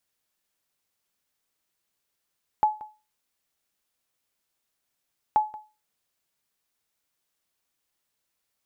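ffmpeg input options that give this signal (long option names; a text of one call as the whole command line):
ffmpeg -f lavfi -i "aevalsrc='0.224*(sin(2*PI*854*mod(t,2.73))*exp(-6.91*mod(t,2.73)/0.3)+0.112*sin(2*PI*854*max(mod(t,2.73)-0.18,0))*exp(-6.91*max(mod(t,2.73)-0.18,0)/0.3))':duration=5.46:sample_rate=44100" out.wav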